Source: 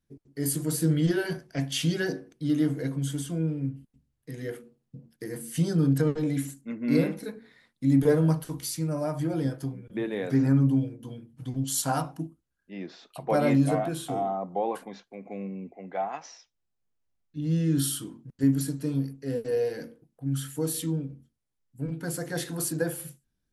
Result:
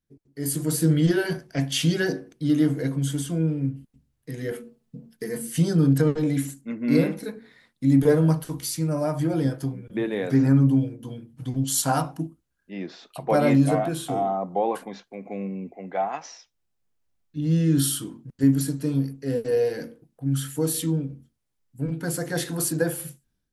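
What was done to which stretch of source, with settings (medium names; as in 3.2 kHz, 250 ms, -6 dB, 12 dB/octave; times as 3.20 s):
4.51–5.47 s: comb 4.6 ms, depth 70%
whole clip: level rider gain up to 9 dB; trim -4.5 dB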